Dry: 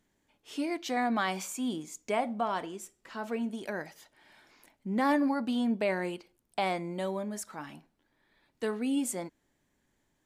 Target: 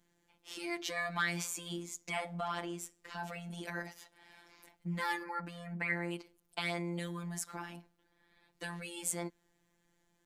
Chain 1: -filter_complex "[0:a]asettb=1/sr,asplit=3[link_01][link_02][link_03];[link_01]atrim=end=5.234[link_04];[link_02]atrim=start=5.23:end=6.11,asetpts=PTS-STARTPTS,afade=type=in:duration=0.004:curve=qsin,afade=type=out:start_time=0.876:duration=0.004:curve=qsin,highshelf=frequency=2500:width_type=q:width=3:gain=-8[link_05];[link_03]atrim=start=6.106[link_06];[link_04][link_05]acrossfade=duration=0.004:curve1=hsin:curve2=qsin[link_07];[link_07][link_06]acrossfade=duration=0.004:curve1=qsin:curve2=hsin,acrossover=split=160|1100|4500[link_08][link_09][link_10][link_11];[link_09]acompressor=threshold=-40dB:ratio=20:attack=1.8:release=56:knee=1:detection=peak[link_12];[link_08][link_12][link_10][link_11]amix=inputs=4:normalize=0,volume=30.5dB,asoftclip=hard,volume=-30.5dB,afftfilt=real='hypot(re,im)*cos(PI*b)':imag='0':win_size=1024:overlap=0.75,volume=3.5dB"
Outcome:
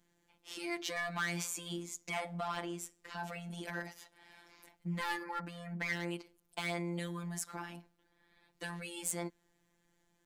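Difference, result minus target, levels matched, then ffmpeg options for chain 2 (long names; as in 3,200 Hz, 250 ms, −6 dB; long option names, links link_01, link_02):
gain into a clipping stage and back: distortion +32 dB
-filter_complex "[0:a]asettb=1/sr,asplit=3[link_01][link_02][link_03];[link_01]atrim=end=5.234[link_04];[link_02]atrim=start=5.23:end=6.11,asetpts=PTS-STARTPTS,afade=type=in:duration=0.004:curve=qsin,afade=type=out:start_time=0.876:duration=0.004:curve=qsin,highshelf=frequency=2500:width_type=q:width=3:gain=-8[link_05];[link_03]atrim=start=6.106[link_06];[link_04][link_05]acrossfade=duration=0.004:curve1=hsin:curve2=qsin[link_07];[link_07][link_06]acrossfade=duration=0.004:curve1=qsin:curve2=hsin,acrossover=split=160|1100|4500[link_08][link_09][link_10][link_11];[link_09]acompressor=threshold=-40dB:ratio=20:attack=1.8:release=56:knee=1:detection=peak[link_12];[link_08][link_12][link_10][link_11]amix=inputs=4:normalize=0,volume=21.5dB,asoftclip=hard,volume=-21.5dB,afftfilt=real='hypot(re,im)*cos(PI*b)':imag='0':win_size=1024:overlap=0.75,volume=3.5dB"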